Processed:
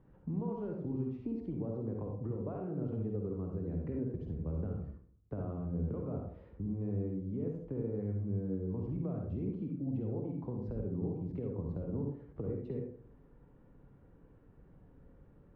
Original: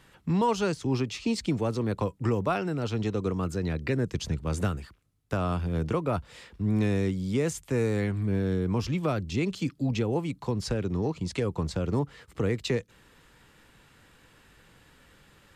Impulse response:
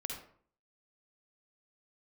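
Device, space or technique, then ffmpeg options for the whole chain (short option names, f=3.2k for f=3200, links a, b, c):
television next door: -filter_complex "[0:a]acompressor=threshold=-36dB:ratio=3,lowpass=530[a];[1:a]atrim=start_sample=2205[b];[a][b]afir=irnorm=-1:irlink=0"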